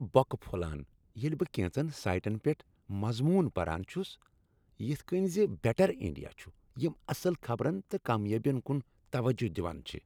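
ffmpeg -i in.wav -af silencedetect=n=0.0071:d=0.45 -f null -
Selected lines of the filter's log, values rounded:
silence_start: 4.14
silence_end: 4.80 | silence_duration: 0.66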